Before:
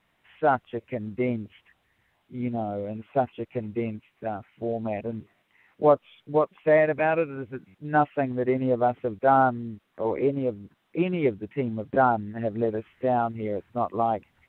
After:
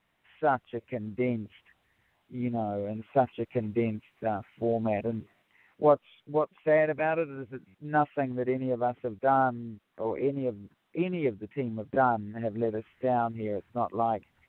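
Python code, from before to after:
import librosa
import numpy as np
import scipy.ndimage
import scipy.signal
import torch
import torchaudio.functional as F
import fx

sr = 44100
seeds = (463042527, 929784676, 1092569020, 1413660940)

y = fx.rider(x, sr, range_db=10, speed_s=2.0)
y = y * librosa.db_to_amplitude(-4.5)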